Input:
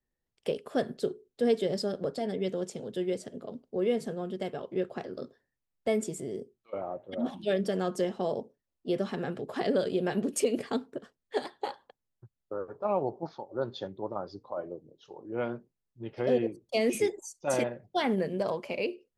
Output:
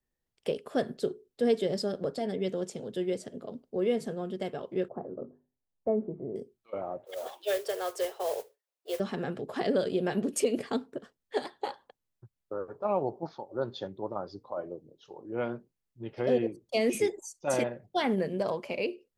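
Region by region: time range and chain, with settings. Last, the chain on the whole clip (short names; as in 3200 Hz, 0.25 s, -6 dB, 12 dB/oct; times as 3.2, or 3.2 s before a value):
4.88–6.36 LPF 1000 Hz 24 dB/oct + notches 50/100/150/200/250/300/350/400 Hz
7.05–9 steep high-pass 410 Hz 48 dB/oct + modulation noise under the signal 15 dB
whole clip: dry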